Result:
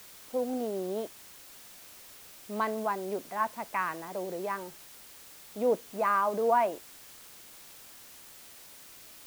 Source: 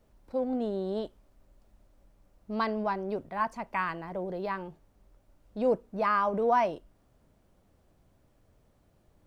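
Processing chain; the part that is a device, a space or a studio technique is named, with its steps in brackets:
wax cylinder (band-pass filter 250–2,700 Hz; tape wow and flutter; white noise bed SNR 17 dB)

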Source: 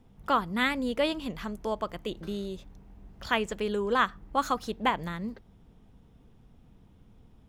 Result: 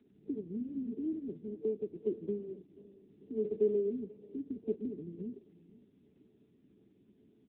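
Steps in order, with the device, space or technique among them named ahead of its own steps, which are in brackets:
0:02.38–0:03.57: mains-hum notches 60/120/180/240/300/360/420/480/540 Hz
brick-wall band-stop 450–7,600 Hz
satellite phone (band-pass filter 380–3,300 Hz; single-tap delay 488 ms −21.5 dB; level +7.5 dB; AMR narrowband 6.7 kbit/s 8,000 Hz)

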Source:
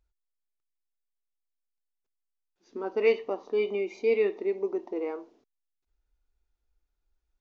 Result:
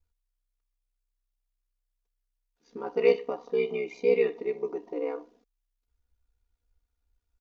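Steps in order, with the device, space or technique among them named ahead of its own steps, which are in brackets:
ring-modulated robot voice (ring modulation 32 Hz; comb filter 4.2 ms, depth 72%)
level +1 dB

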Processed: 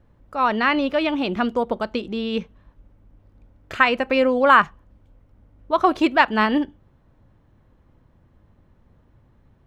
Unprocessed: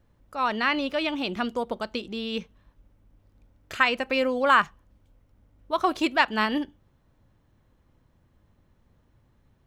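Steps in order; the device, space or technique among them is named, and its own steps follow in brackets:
through cloth (high-shelf EQ 3,400 Hz −12.5 dB)
level +7 dB

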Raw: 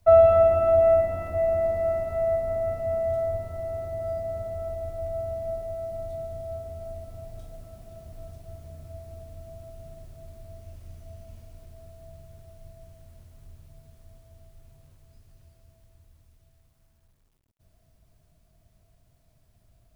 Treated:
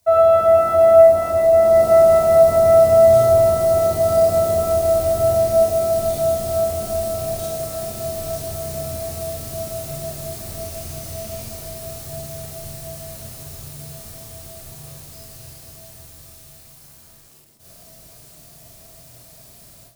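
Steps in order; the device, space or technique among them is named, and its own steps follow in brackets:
bass and treble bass −6 dB, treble +10 dB
far laptop microphone (convolution reverb RT60 0.50 s, pre-delay 27 ms, DRR −3.5 dB; high-pass filter 100 Hz 6 dB per octave; automatic gain control gain up to 16 dB)

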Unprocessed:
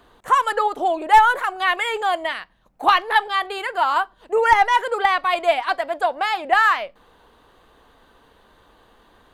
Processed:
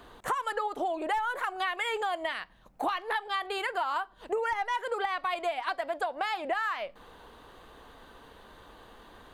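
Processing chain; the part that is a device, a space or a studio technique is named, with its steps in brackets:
serial compression, leveller first (downward compressor 2.5 to 1, threshold −19 dBFS, peak gain reduction 8 dB; downward compressor 4 to 1, threshold −32 dBFS, peak gain reduction 14 dB)
level +2 dB

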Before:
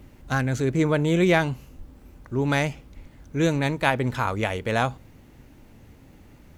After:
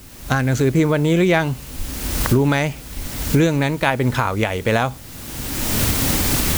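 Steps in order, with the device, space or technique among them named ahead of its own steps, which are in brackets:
cheap recorder with automatic gain (white noise bed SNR 24 dB; camcorder AGC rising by 27 dB per second)
level +3 dB

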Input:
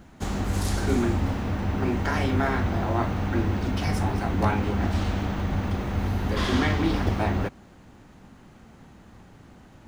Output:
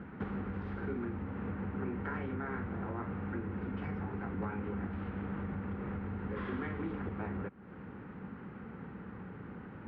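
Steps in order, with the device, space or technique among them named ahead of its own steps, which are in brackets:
bass amplifier (downward compressor 5 to 1, threshold −40 dBFS, peak gain reduction 20 dB; loudspeaker in its box 79–2,300 Hz, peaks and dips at 190 Hz +6 dB, 450 Hz +7 dB, 660 Hz −8 dB, 1,400 Hz +5 dB)
level +2 dB

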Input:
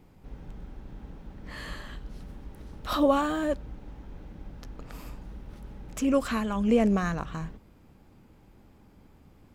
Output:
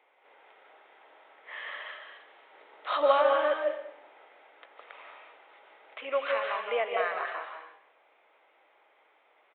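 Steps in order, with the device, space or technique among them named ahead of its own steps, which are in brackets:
high-pass filter 370 Hz 12 dB per octave
0:02.52–0:04.07: low-shelf EQ 450 Hz +7.5 dB
musical greeting card (downsampling to 8,000 Hz; high-pass filter 520 Hz 24 dB per octave; parametric band 2,100 Hz +7 dB 0.32 octaves)
comb and all-pass reverb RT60 0.69 s, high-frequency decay 0.95×, pre-delay 120 ms, DRR 2 dB

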